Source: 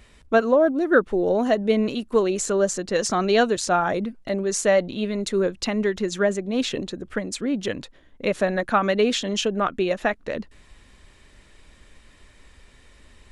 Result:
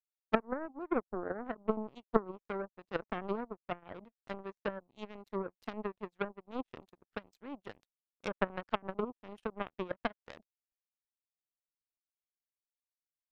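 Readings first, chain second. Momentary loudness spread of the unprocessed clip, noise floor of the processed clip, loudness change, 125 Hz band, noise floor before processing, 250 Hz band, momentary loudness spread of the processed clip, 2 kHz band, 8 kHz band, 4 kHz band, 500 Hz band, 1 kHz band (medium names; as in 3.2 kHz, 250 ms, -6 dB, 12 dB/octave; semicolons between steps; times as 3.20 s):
9 LU, under -85 dBFS, -16.5 dB, -15.5 dB, -54 dBFS, -16.0 dB, 14 LU, -16.5 dB, under -40 dB, -22.5 dB, -17.5 dB, -14.0 dB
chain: low-pass that closes with the level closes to 400 Hz, closed at -16 dBFS; power-law waveshaper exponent 3; trim +1 dB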